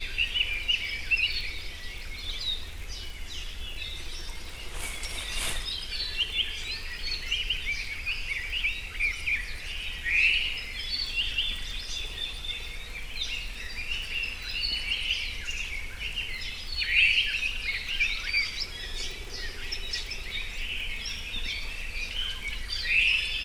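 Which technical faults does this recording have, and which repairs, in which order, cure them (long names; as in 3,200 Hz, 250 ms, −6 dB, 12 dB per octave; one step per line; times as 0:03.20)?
surface crackle 30 per second −35 dBFS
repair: click removal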